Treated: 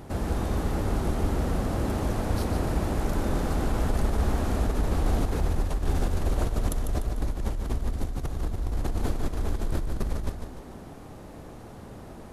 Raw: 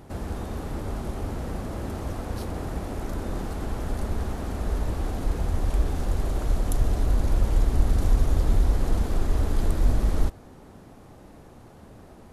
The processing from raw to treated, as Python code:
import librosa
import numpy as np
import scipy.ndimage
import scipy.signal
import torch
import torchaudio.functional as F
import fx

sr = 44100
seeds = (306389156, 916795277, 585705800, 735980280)

y = fx.over_compress(x, sr, threshold_db=-26.0, ratio=-1.0)
y = fx.echo_feedback(y, sr, ms=148, feedback_pct=47, wet_db=-7)